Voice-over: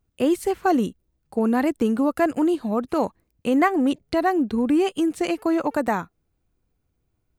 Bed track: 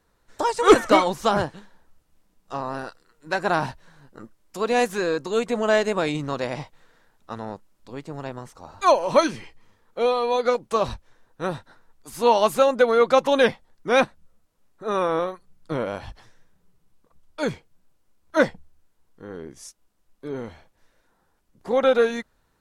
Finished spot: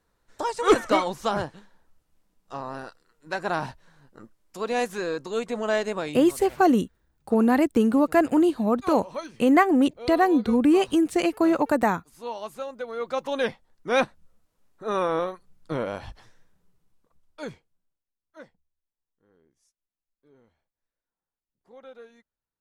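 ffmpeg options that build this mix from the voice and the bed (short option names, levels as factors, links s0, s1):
-filter_complex "[0:a]adelay=5950,volume=1.12[s0];[1:a]volume=2.99,afade=t=out:st=5.93:d=0.38:silence=0.266073,afade=t=in:st=12.87:d=1.38:silence=0.188365,afade=t=out:st=16.26:d=1.8:silence=0.0530884[s1];[s0][s1]amix=inputs=2:normalize=0"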